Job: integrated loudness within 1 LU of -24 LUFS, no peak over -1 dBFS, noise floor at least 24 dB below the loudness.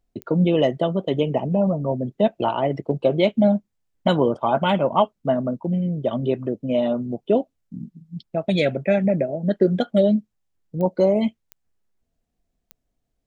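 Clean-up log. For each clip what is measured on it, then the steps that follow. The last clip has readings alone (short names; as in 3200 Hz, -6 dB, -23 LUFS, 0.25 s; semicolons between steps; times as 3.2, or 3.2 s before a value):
clicks 4; loudness -22.0 LUFS; peak -5.0 dBFS; loudness target -24.0 LUFS
-> de-click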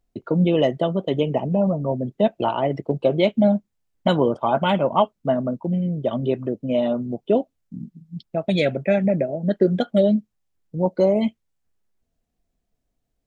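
clicks 0; loudness -22.0 LUFS; peak -5.0 dBFS; loudness target -24.0 LUFS
-> gain -2 dB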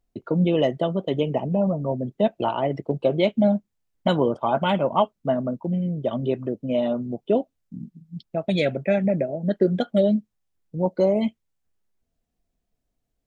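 loudness -24.0 LUFS; peak -7.0 dBFS; noise floor -79 dBFS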